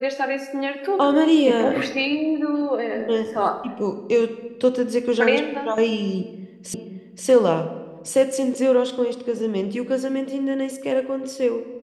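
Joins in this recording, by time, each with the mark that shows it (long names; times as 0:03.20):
0:06.74: the same again, the last 0.53 s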